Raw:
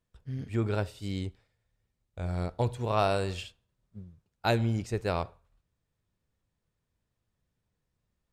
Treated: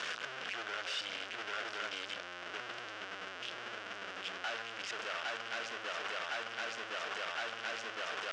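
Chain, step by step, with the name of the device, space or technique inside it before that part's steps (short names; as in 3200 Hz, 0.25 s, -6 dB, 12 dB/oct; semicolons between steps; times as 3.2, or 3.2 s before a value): 2.2–3.43 inverse Chebyshev low-pass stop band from 1400 Hz, stop band 70 dB; HPF 48 Hz 24 dB/oct; swung echo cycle 1.063 s, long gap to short 3:1, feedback 41%, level -9 dB; home computer beeper (infinite clipping; speaker cabinet 750–5300 Hz, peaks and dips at 900 Hz -7 dB, 1500 Hz +7 dB, 2900 Hz +6 dB, 4200 Hz -6 dB)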